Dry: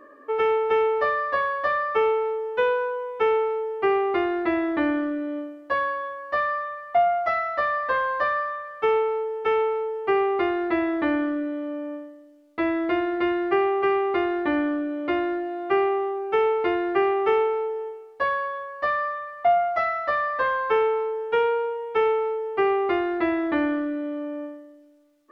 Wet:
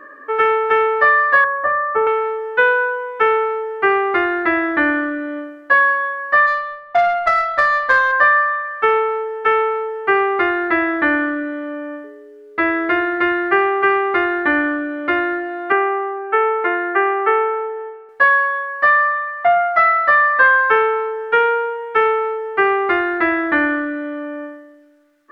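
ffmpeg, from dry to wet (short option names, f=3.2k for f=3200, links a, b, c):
-filter_complex "[0:a]asettb=1/sr,asplit=3[a][b][c];[a]atrim=end=1.444[d];[b]atrim=start=1.44:end=2.07,asetpts=PTS-STARTPTS,afade=t=in:d=0.004:c=qsin,afade=t=out:st=0.626:d=0.004:c=qsin,lowpass=1.1k[e];[c]atrim=start=2.066[f];[d][e]acrossfade=d=0.004:c1=hsin:c2=qsin[g];[g][f]acrossfade=d=0.004:c1=qsin:c2=hsin,asplit=3[h][i][j];[h]afade=t=out:st=6.46:d=0.02[k];[i]adynamicsmooth=sensitivity=1:basefreq=610,afade=t=in:st=6.46:d=0.02,afade=t=out:st=8.11:d=0.02[l];[j]afade=t=in:st=8.11:d=0.02[m];[k][l][m]amix=inputs=3:normalize=0,asettb=1/sr,asplit=3[n][o][p];[n]atrim=end=12.044[q];[o]atrim=start=12.04:end=13.05,asetpts=PTS-STARTPTS,afade=t=in:d=0.004:c=qsin,afade=t=out:st=1.006:d=0.004:c=qsin,aeval=exprs='val(0)+0.00794*sin(2*PI*420*n/s)':c=same[r];[p]atrim=start=13.046[s];[q][r]acrossfade=d=0.004:c1=hsin:c2=qsin[t];[t][s]acrossfade=d=0.004:c1=qsin:c2=hsin,asettb=1/sr,asplit=3[u][v][w];[u]atrim=end=15.724[x];[v]atrim=start=15.72:end=18.09,asetpts=PTS-STARTPTS,afade=t=in:d=0.004:c=qsin,afade=t=out:st=2.366:d=0.004:c=qsin,highpass=340,lowpass=2.2k[y];[w]atrim=start=18.086[z];[x][y]acrossfade=d=0.004:c1=hsin:c2=qsin[aa];[aa][z]acrossfade=d=0.004:c1=qsin:c2=hsin,equalizer=f=1.6k:w=1.6:g=14,volume=3dB"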